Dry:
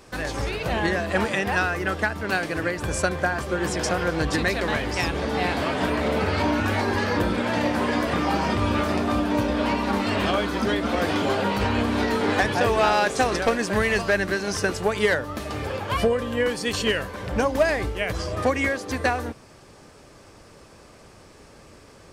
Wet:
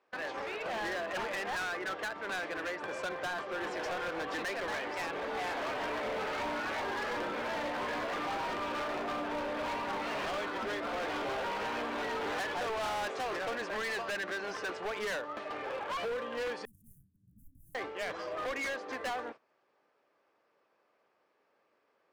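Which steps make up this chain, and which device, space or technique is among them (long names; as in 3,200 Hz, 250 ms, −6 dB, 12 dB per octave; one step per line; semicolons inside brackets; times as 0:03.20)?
walkie-talkie (band-pass filter 480–2,500 Hz; hard clipping −28.5 dBFS, distortion −6 dB; noise gate −42 dBFS, range −16 dB)
0:16.65–0:17.75: inverse Chebyshev band-stop filter 470–4,600 Hz, stop band 60 dB
level −4.5 dB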